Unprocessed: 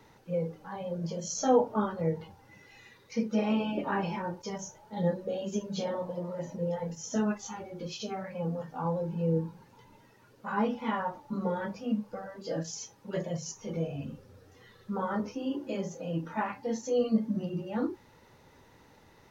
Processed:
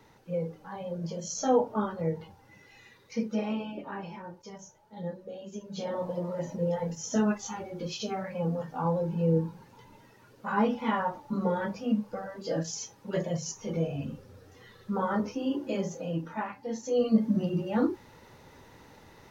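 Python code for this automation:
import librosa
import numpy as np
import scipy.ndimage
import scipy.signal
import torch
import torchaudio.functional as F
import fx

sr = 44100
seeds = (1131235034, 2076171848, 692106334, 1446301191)

y = fx.gain(x, sr, db=fx.line((3.25, -0.5), (3.84, -8.0), (5.57, -8.0), (6.05, 3.0), (15.95, 3.0), (16.57, -4.0), (17.28, 5.0)))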